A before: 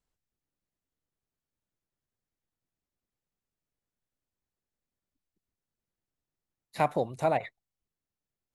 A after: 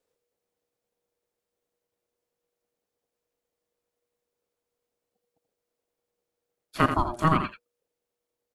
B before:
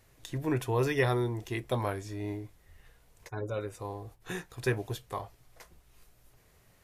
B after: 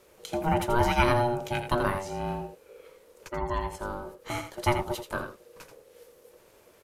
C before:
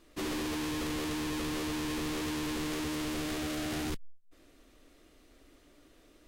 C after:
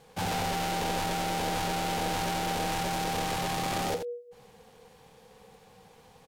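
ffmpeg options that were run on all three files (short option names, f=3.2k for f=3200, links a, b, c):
-filter_complex "[0:a]aeval=exprs='val(0)*sin(2*PI*480*n/s)':c=same,asplit=2[a][b];[b]aecho=0:1:83:0.376[c];[a][c]amix=inputs=2:normalize=0,volume=7dB"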